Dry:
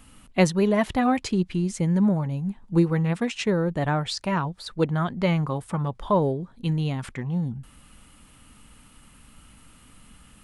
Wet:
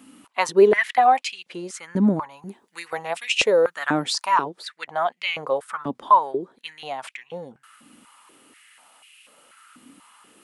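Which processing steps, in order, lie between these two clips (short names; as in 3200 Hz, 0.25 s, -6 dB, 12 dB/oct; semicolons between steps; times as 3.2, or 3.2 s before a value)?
2.42–4.44 high shelf 4300 Hz +10 dB; stepped high-pass 4.1 Hz 270–2600 Hz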